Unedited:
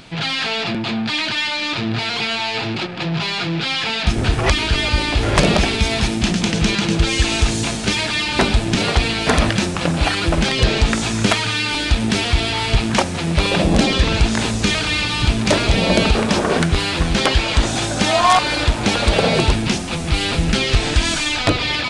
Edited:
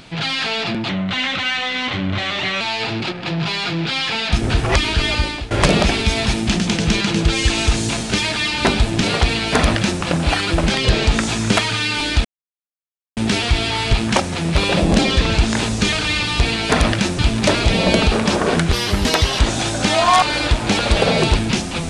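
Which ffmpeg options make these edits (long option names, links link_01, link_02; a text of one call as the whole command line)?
ffmpeg -i in.wav -filter_complex "[0:a]asplit=9[link_01][link_02][link_03][link_04][link_05][link_06][link_07][link_08][link_09];[link_01]atrim=end=0.894[link_10];[link_02]atrim=start=0.89:end=2.35,asetpts=PTS-STARTPTS,asetrate=37485,aresample=44100,atrim=end_sample=75748,asetpts=PTS-STARTPTS[link_11];[link_03]atrim=start=2.346:end=5.25,asetpts=PTS-STARTPTS,afade=type=out:start_time=2.544:duration=0.36:silence=0.112202[link_12];[link_04]atrim=start=5.25:end=11.99,asetpts=PTS-STARTPTS,afade=type=in:duration=0.004:curve=hsin:silence=0.112202,afade=type=out:start_time=6.736:duration=0.004:curve=hsin,apad=pad_dur=0.92[link_13];[link_05]atrim=start=11.99:end=15.222,asetpts=PTS-STARTPTS,afade=type=in:duration=0.004:curve=hsin[link_14];[link_06]atrim=start=8.968:end=9.762[link_15];[link_07]atrim=start=15.218:end=16.764[link_16];[link_08]atrim=start=16.76:end=17.56,asetpts=PTS-STARTPTS,asetrate=52920,aresample=44100[link_17];[link_09]atrim=start=17.556[link_18];[link_10][link_11]acrossfade=duration=0.004:curve1=hsin:curve2=hsin[link_19];[link_12][link_13][link_14]concat=n=3:v=0:a=1[link_20];[link_19][link_20]acrossfade=duration=0.004:curve1=hsin:curve2=hsin[link_21];[link_21][link_15]acrossfade=duration=0.004:curve1=hsin:curve2=hsin[link_22];[link_22][link_16]acrossfade=duration=0.004:curve1=hsin:curve2=hsin[link_23];[link_23][link_17]acrossfade=duration=0.004:curve1=hsin:curve2=hsin[link_24];[link_24][link_18]acrossfade=duration=0.004:curve1=hsin:curve2=hsin" out.wav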